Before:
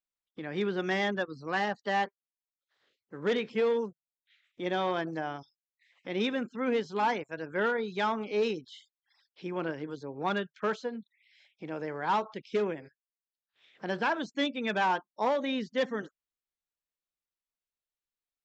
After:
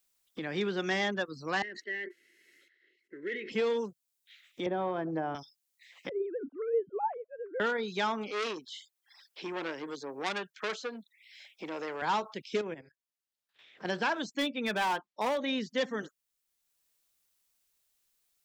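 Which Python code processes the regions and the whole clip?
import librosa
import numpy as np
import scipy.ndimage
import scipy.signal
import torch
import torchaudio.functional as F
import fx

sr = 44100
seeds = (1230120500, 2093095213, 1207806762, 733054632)

y = fx.chain(x, sr, fx.double_bandpass(hz=850.0, octaves=2.5),
    fx.notch_comb(f0_hz=1200.0),
    fx.sustainer(db_per_s=59.0), at=(1.62, 3.52))
y = fx.chain(y, sr, fx.lowpass(hz=1000.0, slope=12),
    fx.band_squash(depth_pct=100), at=(4.66, 5.35))
y = fx.chain(y, sr, fx.sine_speech(),
    fx.bessel_lowpass(hz=660.0, order=4),
    fx.dynamic_eq(hz=250.0, q=1.5, threshold_db=-45.0, ratio=4.0, max_db=4), at=(6.09, 7.6))
y = fx.chain(y, sr, fx.highpass(hz=280.0, slope=12),
    fx.transformer_sat(knee_hz=2300.0), at=(8.3, 12.02))
y = fx.chain(y, sr, fx.high_shelf(hz=5300.0, db=-11.5),
    fx.level_steps(step_db=12), at=(12.61, 13.85))
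y = fx.chain(y, sr, fx.lowpass(hz=4200.0, slope=12),
    fx.clip_hard(threshold_db=-24.0), at=(14.37, 15.48))
y = fx.high_shelf(y, sr, hz=3800.0, db=11.0)
y = fx.band_squash(y, sr, depth_pct=40)
y = y * librosa.db_to_amplitude(-1.5)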